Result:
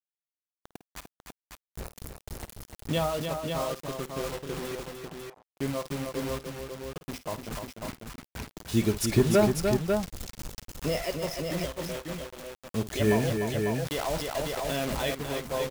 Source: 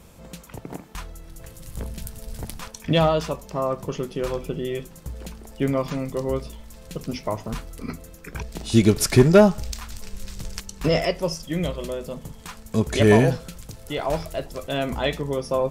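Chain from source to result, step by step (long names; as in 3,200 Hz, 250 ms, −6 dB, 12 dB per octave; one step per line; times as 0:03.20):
noise gate −33 dBFS, range −8 dB
reverb reduction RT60 0.52 s
bit reduction 5 bits
0:04.75–0:05.28: resonant band-pass 850 Hz, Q 1.8
multi-tap delay 52/298/546 ms −14.5/−6/−5 dB
0:13.63–0:15.15: envelope flattener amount 50%
level −8.5 dB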